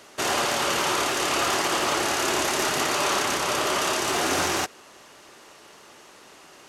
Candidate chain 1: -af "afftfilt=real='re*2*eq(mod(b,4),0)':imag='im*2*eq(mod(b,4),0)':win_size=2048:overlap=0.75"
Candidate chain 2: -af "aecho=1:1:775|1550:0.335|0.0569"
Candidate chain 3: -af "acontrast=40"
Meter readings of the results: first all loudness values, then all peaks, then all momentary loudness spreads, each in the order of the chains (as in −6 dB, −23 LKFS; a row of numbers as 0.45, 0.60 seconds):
−25.5, −23.5, −18.0 LKFS; −14.0, −10.5, −7.5 dBFS; 1, 10, 1 LU